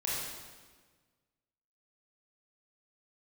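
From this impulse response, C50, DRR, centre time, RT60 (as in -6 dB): -2.0 dB, -7.0 dB, 99 ms, 1.5 s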